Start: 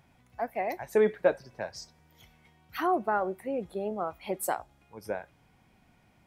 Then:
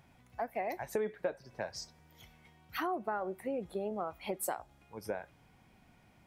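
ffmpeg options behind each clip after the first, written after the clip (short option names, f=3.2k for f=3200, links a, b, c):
-af "acompressor=threshold=-33dB:ratio=4"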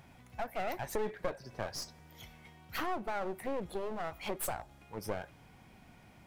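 -filter_complex "[0:a]asplit=2[a][b];[b]alimiter=level_in=9dB:limit=-24dB:level=0:latency=1:release=16,volume=-9dB,volume=-1dB[c];[a][c]amix=inputs=2:normalize=0,aeval=exprs='clip(val(0),-1,0.00668)':c=same"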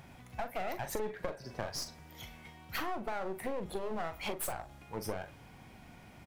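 -filter_complex "[0:a]acompressor=threshold=-36dB:ratio=6,asplit=2[a][b];[b]adelay=42,volume=-10.5dB[c];[a][c]amix=inputs=2:normalize=0,volume=3.5dB"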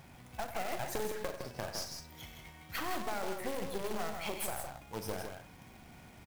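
-af "aecho=1:1:93.29|160.3:0.282|0.501,acrusher=bits=2:mode=log:mix=0:aa=0.000001,volume=-2dB"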